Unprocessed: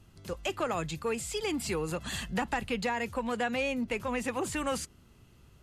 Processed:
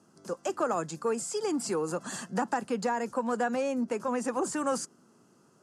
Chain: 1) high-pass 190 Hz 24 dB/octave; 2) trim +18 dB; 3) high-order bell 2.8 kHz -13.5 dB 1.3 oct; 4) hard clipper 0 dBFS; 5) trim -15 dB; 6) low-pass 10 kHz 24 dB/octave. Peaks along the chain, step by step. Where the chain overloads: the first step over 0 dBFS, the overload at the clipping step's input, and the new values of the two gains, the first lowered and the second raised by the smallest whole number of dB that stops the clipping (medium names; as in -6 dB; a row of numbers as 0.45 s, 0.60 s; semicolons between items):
-19.0 dBFS, -1.0 dBFS, -2.5 dBFS, -2.5 dBFS, -17.5 dBFS, -17.5 dBFS; nothing clips